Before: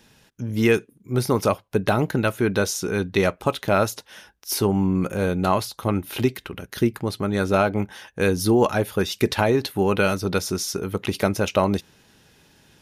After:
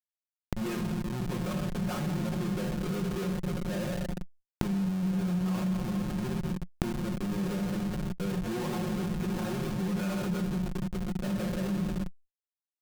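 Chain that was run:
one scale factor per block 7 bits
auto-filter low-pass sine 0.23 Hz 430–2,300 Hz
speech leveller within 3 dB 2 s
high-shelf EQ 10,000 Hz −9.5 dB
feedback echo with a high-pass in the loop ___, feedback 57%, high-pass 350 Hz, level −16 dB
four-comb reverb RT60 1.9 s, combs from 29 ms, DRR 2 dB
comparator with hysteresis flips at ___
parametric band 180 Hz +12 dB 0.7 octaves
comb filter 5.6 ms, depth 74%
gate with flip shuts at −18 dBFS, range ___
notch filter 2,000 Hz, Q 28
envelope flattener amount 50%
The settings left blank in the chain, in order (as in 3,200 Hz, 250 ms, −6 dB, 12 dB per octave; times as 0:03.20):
309 ms, −20.5 dBFS, −24 dB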